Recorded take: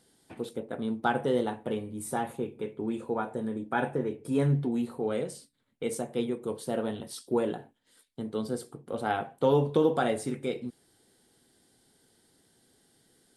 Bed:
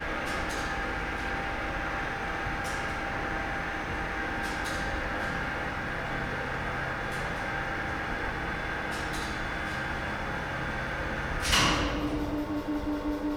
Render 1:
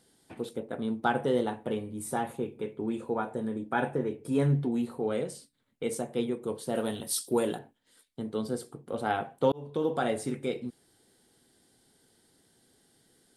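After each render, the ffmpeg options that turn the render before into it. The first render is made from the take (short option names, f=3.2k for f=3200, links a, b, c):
-filter_complex "[0:a]asettb=1/sr,asplit=3[a][b][c];[a]atrim=end=6.754[d];[b]atrim=start=6.75:end=7.59,asetpts=PTS-STARTPTS,afade=t=in:d=0.004:c=qsin,afade=t=out:st=0.836:d=0.004:c=qsin,aemphasis=mode=production:type=75kf[e];[c]atrim=start=7.586[f];[d][e]acrossfade=d=0.004:c1=hsin:c2=qsin[g];[g][f]acrossfade=d=0.004:c1=qsin:c2=hsin,asplit=2[h][i];[h]atrim=end=9.52,asetpts=PTS-STARTPTS,afade=t=out:st=9.516:d=0.004:c=hsin[j];[i]atrim=start=9.52,asetpts=PTS-STARTPTS,afade=t=in:d=0.85:c=qsin[k];[j][k]concat=n=2:v=0:a=1"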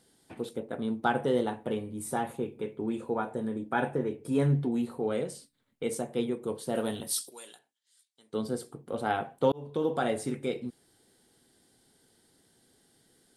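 -filter_complex "[0:a]asplit=3[a][b][c];[a]afade=t=out:st=7.29:d=0.02[d];[b]bandpass=f=6.5k:t=q:w=1.1,afade=t=in:st=7.29:d=0.02,afade=t=out:st=8.32:d=0.02[e];[c]afade=t=in:st=8.32:d=0.02[f];[d][e][f]amix=inputs=3:normalize=0"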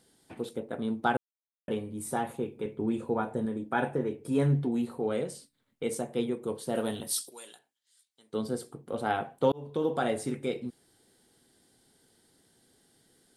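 -filter_complex "[0:a]asettb=1/sr,asplit=3[a][b][c];[a]atrim=end=2.654[d];[b]atrim=start=2.65:end=3.46,asetpts=PTS-STARTPTS,afade=t=in:d=0.004:c=qsin,afade=t=out:st=0.806:d=0.004:c=qsin,lowshelf=f=190:g=7[e];[c]atrim=start=3.456[f];[d][e]acrossfade=d=0.004:c1=hsin:c2=qsin[g];[g][f]acrossfade=d=0.004:c1=qsin:c2=hsin,asplit=3[h][i][j];[h]atrim=end=1.17,asetpts=PTS-STARTPTS,afade=t=out:st=1.166:d=0.004:c=hsin[k];[i]atrim=start=1.17:end=1.68,asetpts=PTS-STARTPTS,volume=0[l];[j]atrim=start=1.68,asetpts=PTS-STARTPTS,afade=t=in:d=0.004:c=hsin[m];[k][l][m]concat=n=3:v=0:a=1"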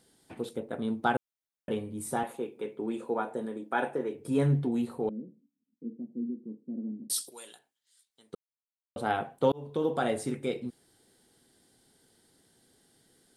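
-filter_complex "[0:a]asettb=1/sr,asplit=3[a][b][c];[a]atrim=end=2.234[d];[b]atrim=start=2.23:end=4.15,asetpts=PTS-STARTPTS,afade=t=in:d=0.004:c=qsin,afade=t=out:st=1.916:d=0.004:c=qsin,highpass=290[e];[c]atrim=start=4.146[f];[d][e]acrossfade=d=0.004:c1=hsin:c2=qsin[g];[g][f]acrossfade=d=0.004:c1=qsin:c2=hsin,asettb=1/sr,asplit=3[h][i][j];[h]atrim=end=5.094[k];[i]atrim=start=5.09:end=7.1,asetpts=PTS-STARTPTS,afade=t=in:d=0.004:c=qsin,afade=t=out:st=2.006:d=0.004:c=qsin,asuperpass=centerf=240:order=4:qfactor=2.4[l];[j]atrim=start=7.096[m];[k][l]acrossfade=d=0.004:c1=hsin:c2=qsin[n];[n][m]acrossfade=d=0.004:c1=qsin:c2=hsin,asplit=3[o][p][q];[o]atrim=end=8.35,asetpts=PTS-STARTPTS,afade=t=out:st=8.346:d=0.004:c=hsin[r];[p]atrim=start=8.35:end=8.96,asetpts=PTS-STARTPTS,volume=0[s];[q]atrim=start=8.96,asetpts=PTS-STARTPTS,afade=t=in:d=0.004:c=hsin[t];[r][s][t]concat=n=3:v=0:a=1"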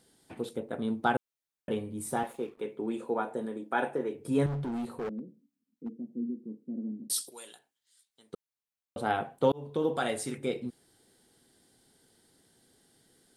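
-filter_complex "[0:a]asettb=1/sr,asplit=3[a][b][c];[a]atrim=end=2.094[d];[b]atrim=start=2.09:end=2.61,asetpts=PTS-STARTPTS,afade=t=in:d=0.004:c=qsin,afade=t=out:st=0.516:d=0.004:c=qsin,aeval=exprs='sgn(val(0))*max(abs(val(0))-0.00119,0)':c=same[e];[c]atrim=start=2.606[f];[d][e]acrossfade=d=0.004:c1=hsin:c2=qsin[g];[g][f]acrossfade=d=0.004:c1=qsin:c2=hsin,asettb=1/sr,asplit=3[h][i][j];[h]atrim=end=4.464[k];[i]atrim=start=4.46:end=6.04,asetpts=PTS-STARTPTS,afade=t=in:d=0.004:c=qsin,afade=t=out:st=1.576:d=0.004:c=qsin,asoftclip=type=hard:threshold=-31.5dB[l];[j]atrim=start=6.036[m];[k][l]acrossfade=d=0.004:c1=hsin:c2=qsin[n];[n][m]acrossfade=d=0.004:c1=qsin:c2=hsin,asettb=1/sr,asplit=3[o][p][q];[o]atrim=end=9.974[r];[p]atrim=start=9.97:end=10.38,asetpts=PTS-STARTPTS,afade=t=in:d=0.004:c=qsin,afade=t=out:st=0.406:d=0.004:c=qsin,tiltshelf=f=1.2k:g=-4.5[s];[q]atrim=start=10.376[t];[r][s]acrossfade=d=0.004:c1=hsin:c2=qsin[u];[u][t]acrossfade=d=0.004:c1=qsin:c2=hsin"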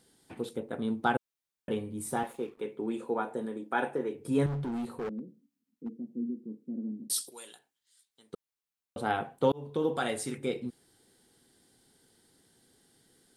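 -af "equalizer=f=630:w=4.5:g=-3.5"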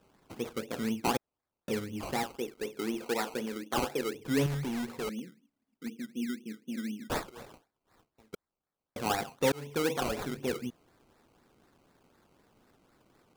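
-af "acrusher=samples=20:mix=1:aa=0.000001:lfo=1:lforange=12:lforate=4,asoftclip=type=tanh:threshold=-17dB"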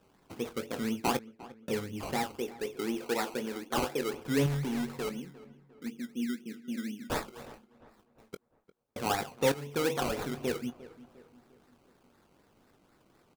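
-filter_complex "[0:a]asplit=2[a][b];[b]adelay=21,volume=-12.5dB[c];[a][c]amix=inputs=2:normalize=0,asplit=2[d][e];[e]adelay=352,lowpass=f=2.3k:p=1,volume=-18dB,asplit=2[f][g];[g]adelay=352,lowpass=f=2.3k:p=1,volume=0.47,asplit=2[h][i];[i]adelay=352,lowpass=f=2.3k:p=1,volume=0.47,asplit=2[j][k];[k]adelay=352,lowpass=f=2.3k:p=1,volume=0.47[l];[d][f][h][j][l]amix=inputs=5:normalize=0"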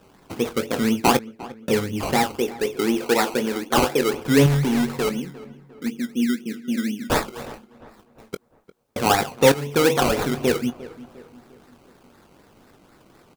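-af "volume=12dB"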